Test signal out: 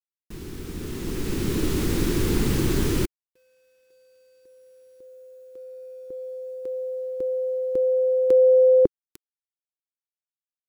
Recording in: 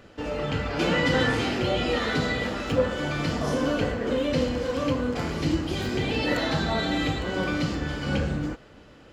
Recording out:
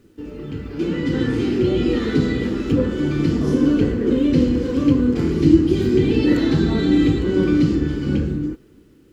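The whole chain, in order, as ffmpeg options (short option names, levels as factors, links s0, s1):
-af "dynaudnorm=f=200:g=13:m=6.31,lowshelf=f=480:t=q:w=3:g=9.5,acrusher=bits=8:mix=0:aa=0.000001,volume=0.251"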